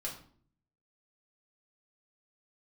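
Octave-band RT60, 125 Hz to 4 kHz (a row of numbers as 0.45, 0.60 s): 0.90, 0.75, 0.55, 0.50, 0.40, 0.35 s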